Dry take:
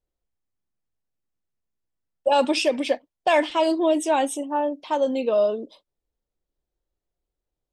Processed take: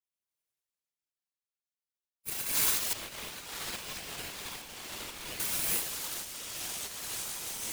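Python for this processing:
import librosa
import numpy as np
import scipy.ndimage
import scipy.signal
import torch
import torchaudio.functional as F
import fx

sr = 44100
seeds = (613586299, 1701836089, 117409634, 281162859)

y = fx.lower_of_two(x, sr, delay_ms=1.8)
y = (np.kron(scipy.signal.resample_poly(y, 1, 4), np.eye(4)[0]) * 4)[:len(y)]
y = fx.rev_gated(y, sr, seeds[0], gate_ms=390, shape='rising', drr_db=-7.0)
y = fx.spec_gate(y, sr, threshold_db=-25, keep='weak')
y = fx.echo_pitch(y, sr, ms=86, semitones=-5, count=3, db_per_echo=-6.0)
y = scipy.signal.sosfilt(scipy.signal.butter(2, 1200.0, 'highpass', fs=sr, output='sos'), y)
y = fx.whisperise(y, sr, seeds[1])
y = fx.lowpass(y, sr, hz=1800.0, slope=6, at=(2.93, 5.4))
y = y * np.sign(np.sin(2.0 * np.pi * 1200.0 * np.arange(len(y)) / sr))
y = y * librosa.db_to_amplitude(-6.0)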